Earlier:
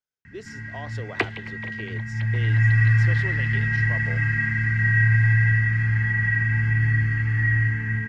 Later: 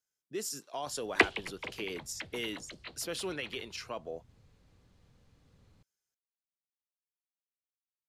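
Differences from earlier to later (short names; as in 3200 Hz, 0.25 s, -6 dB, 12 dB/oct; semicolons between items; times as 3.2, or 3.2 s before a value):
first sound: muted; second sound: add air absorption 81 m; master: remove air absorption 160 m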